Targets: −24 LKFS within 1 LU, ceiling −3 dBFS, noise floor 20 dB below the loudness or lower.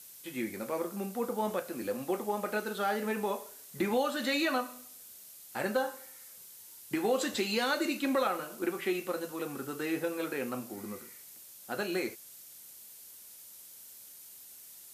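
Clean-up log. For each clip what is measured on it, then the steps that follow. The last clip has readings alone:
background noise floor −52 dBFS; target noise floor −54 dBFS; integrated loudness −33.5 LKFS; sample peak −18.0 dBFS; target loudness −24.0 LKFS
→ broadband denoise 6 dB, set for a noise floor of −52 dBFS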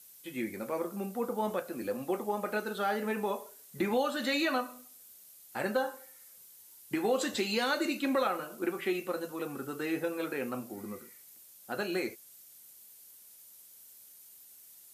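background noise floor −55 dBFS; integrated loudness −33.5 LKFS; sample peak −18.0 dBFS; target loudness −24.0 LKFS
→ level +9.5 dB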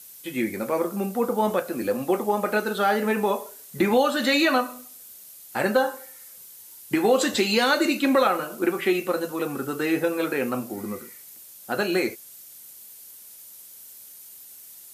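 integrated loudness −24.0 LKFS; sample peak −8.5 dBFS; background noise floor −46 dBFS

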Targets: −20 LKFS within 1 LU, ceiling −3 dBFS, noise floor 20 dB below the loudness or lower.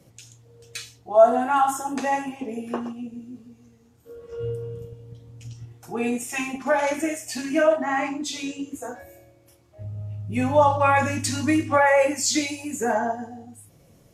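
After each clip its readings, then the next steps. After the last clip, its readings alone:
integrated loudness −23.0 LKFS; sample peak −4.5 dBFS; target loudness −20.0 LKFS
→ level +3 dB
brickwall limiter −3 dBFS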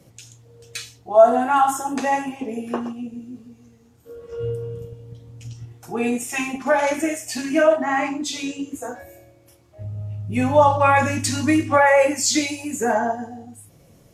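integrated loudness −20.5 LKFS; sample peak −3.0 dBFS; background noise floor −53 dBFS

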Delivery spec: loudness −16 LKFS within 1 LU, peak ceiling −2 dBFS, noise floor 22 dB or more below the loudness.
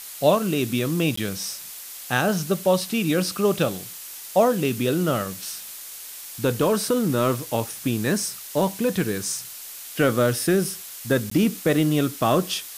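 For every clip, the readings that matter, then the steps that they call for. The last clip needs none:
number of dropouts 2; longest dropout 14 ms; background noise floor −39 dBFS; target noise floor −46 dBFS; integrated loudness −23.5 LKFS; sample peak −4.5 dBFS; target loudness −16.0 LKFS
→ repair the gap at 0:01.16/0:11.30, 14 ms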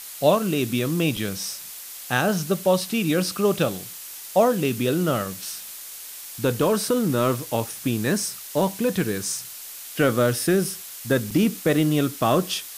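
number of dropouts 0; background noise floor −39 dBFS; target noise floor −46 dBFS
→ broadband denoise 7 dB, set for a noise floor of −39 dBFS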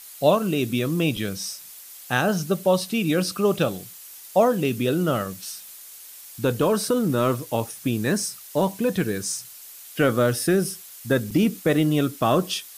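background noise floor −43 dBFS; target noise floor −46 dBFS
→ broadband denoise 6 dB, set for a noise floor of −43 dBFS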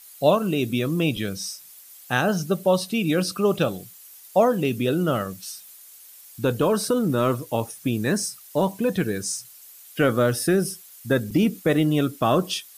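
background noise floor −47 dBFS; integrated loudness −23.5 LKFS; sample peak −5.0 dBFS; target loudness −16.0 LKFS
→ level +7.5 dB
brickwall limiter −2 dBFS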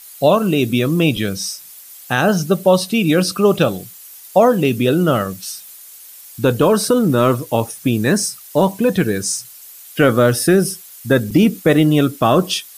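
integrated loudness −16.0 LKFS; sample peak −2.0 dBFS; background noise floor −40 dBFS

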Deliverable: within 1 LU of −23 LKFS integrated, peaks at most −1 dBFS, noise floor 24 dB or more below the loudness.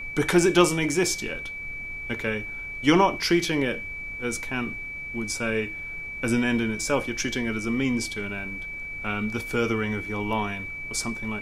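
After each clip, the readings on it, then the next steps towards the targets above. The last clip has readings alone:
interfering tone 2,300 Hz; level of the tone −33 dBFS; background noise floor −36 dBFS; target noise floor −50 dBFS; integrated loudness −26.0 LKFS; sample peak −4.0 dBFS; target loudness −23.0 LKFS
→ notch filter 2,300 Hz, Q 30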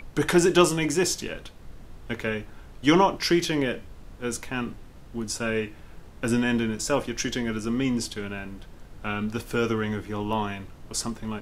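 interfering tone none found; background noise floor −46 dBFS; target noise floor −50 dBFS
→ noise reduction from a noise print 6 dB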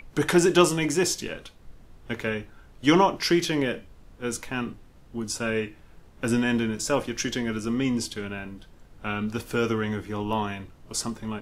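background noise floor −52 dBFS; integrated loudness −26.0 LKFS; sample peak −4.5 dBFS; target loudness −23.0 LKFS
→ level +3 dB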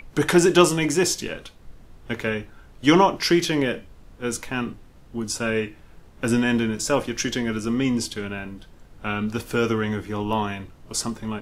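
integrated loudness −23.0 LKFS; sample peak −1.5 dBFS; background noise floor −49 dBFS

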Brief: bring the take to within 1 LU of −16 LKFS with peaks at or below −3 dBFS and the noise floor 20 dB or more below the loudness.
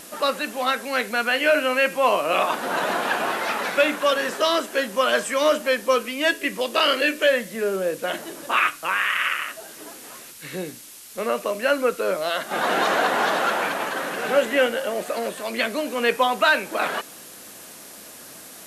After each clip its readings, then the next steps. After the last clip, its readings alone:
background noise floor −42 dBFS; target noise floor −43 dBFS; integrated loudness −22.5 LKFS; sample peak −7.5 dBFS; target loudness −16.0 LKFS
→ broadband denoise 6 dB, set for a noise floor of −42 dBFS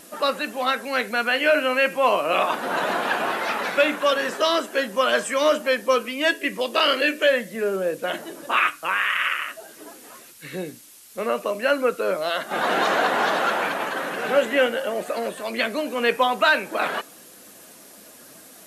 background noise floor −47 dBFS; integrated loudness −22.5 LKFS; sample peak −7.5 dBFS; target loudness −16.0 LKFS
→ level +6.5 dB
brickwall limiter −3 dBFS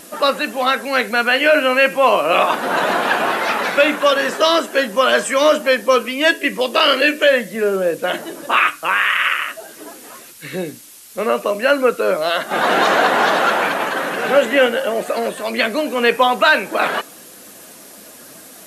integrated loudness −16.0 LKFS; sample peak −3.0 dBFS; background noise floor −40 dBFS

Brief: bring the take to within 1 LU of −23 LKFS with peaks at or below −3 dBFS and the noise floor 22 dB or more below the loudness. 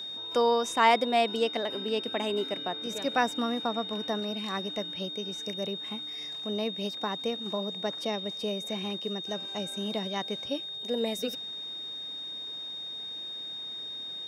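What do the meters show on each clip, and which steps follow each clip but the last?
interfering tone 3,700 Hz; level of the tone −36 dBFS; integrated loudness −31.0 LKFS; sample peak −8.5 dBFS; target loudness −23.0 LKFS
→ notch filter 3,700 Hz, Q 30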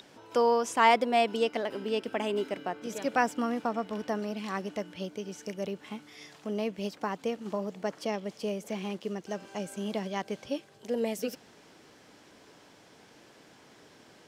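interfering tone none found; integrated loudness −31.5 LKFS; sample peak −8.5 dBFS; target loudness −23.0 LKFS
→ level +8.5 dB
brickwall limiter −3 dBFS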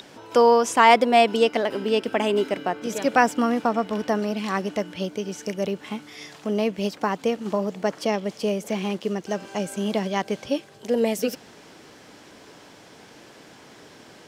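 integrated loudness −23.5 LKFS; sample peak −3.0 dBFS; background noise floor −49 dBFS

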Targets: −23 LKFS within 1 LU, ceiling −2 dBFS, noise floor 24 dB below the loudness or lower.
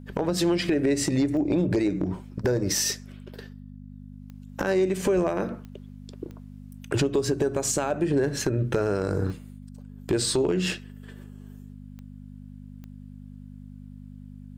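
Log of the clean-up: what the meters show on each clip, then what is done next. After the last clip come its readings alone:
number of clicks 7; mains hum 50 Hz; hum harmonics up to 250 Hz; level of the hum −40 dBFS; integrated loudness −25.5 LKFS; sample peak −15.0 dBFS; target loudness −23.0 LKFS
→ click removal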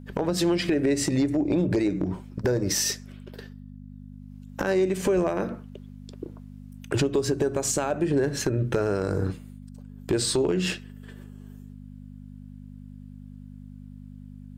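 number of clicks 0; mains hum 50 Hz; hum harmonics up to 250 Hz; level of the hum −40 dBFS
→ hum removal 50 Hz, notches 5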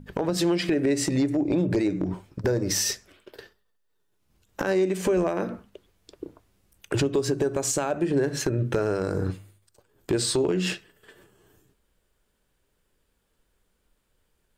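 mains hum none found; integrated loudness −25.5 LKFS; sample peak −14.5 dBFS; target loudness −23.0 LKFS
→ level +2.5 dB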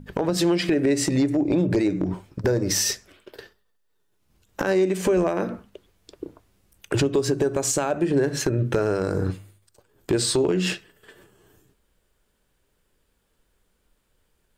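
integrated loudness −23.5 LKFS; sample peak −12.0 dBFS; background noise floor −70 dBFS

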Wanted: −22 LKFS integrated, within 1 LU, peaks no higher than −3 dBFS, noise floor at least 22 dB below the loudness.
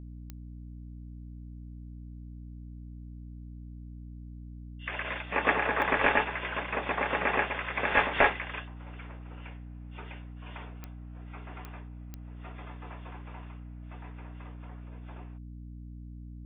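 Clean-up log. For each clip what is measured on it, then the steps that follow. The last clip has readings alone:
number of clicks 5; mains hum 60 Hz; hum harmonics up to 300 Hz; level of the hum −41 dBFS; integrated loudness −28.5 LKFS; sample peak −8.5 dBFS; target loudness −22.0 LKFS
→ click removal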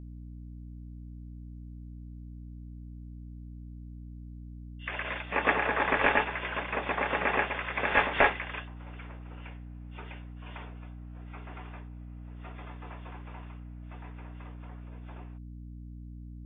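number of clicks 0; mains hum 60 Hz; hum harmonics up to 300 Hz; level of the hum −41 dBFS
→ hum removal 60 Hz, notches 5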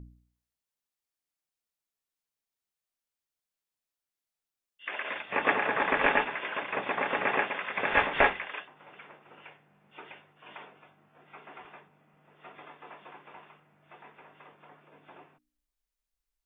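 mains hum none found; integrated loudness −28.5 LKFS; sample peak −8.5 dBFS; target loudness −22.0 LKFS
→ level +6.5 dB
brickwall limiter −3 dBFS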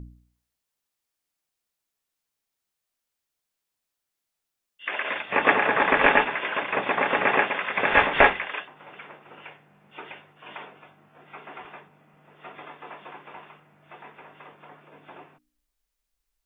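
integrated loudness −22.0 LKFS; sample peak −3.0 dBFS; background noise floor −84 dBFS

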